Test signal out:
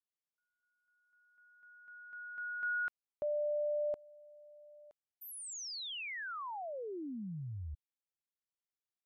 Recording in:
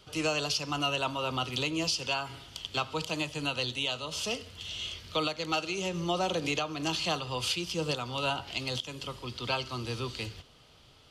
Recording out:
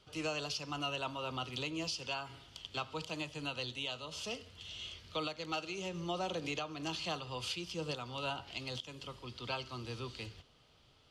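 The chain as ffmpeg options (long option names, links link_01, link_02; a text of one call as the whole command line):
ffmpeg -i in.wav -af "highshelf=frequency=11000:gain=-11,volume=-7.5dB" out.wav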